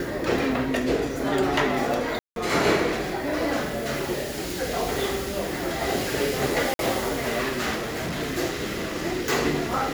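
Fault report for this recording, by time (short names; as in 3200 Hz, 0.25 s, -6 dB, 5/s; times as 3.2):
2.19–2.36 gap 0.172 s
6.74–6.79 gap 52 ms
7.75–8.21 clipped -26 dBFS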